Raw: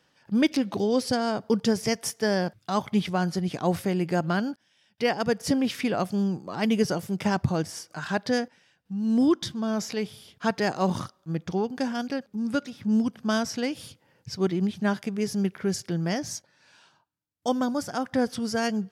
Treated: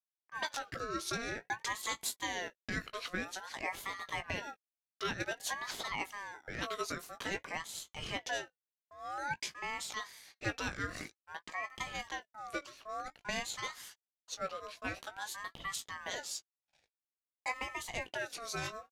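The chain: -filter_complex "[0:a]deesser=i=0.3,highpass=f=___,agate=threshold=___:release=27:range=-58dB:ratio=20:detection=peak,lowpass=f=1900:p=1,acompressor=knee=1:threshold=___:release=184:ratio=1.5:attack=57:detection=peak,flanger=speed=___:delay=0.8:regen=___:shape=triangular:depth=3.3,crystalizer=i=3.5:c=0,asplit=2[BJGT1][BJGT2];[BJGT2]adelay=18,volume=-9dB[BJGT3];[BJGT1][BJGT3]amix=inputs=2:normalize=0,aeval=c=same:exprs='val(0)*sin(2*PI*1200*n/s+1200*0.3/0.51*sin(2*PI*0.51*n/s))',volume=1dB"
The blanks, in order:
490, -59dB, -39dB, 0.43, -86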